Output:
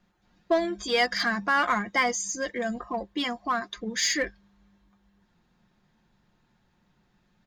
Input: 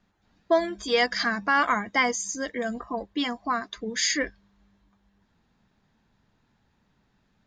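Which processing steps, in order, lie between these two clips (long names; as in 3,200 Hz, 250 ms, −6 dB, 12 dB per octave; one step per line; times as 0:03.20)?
comb filter 5.6 ms, depth 38%
in parallel at −8 dB: hard clipping −25.5 dBFS, distortion −6 dB
on the sum: level −3 dB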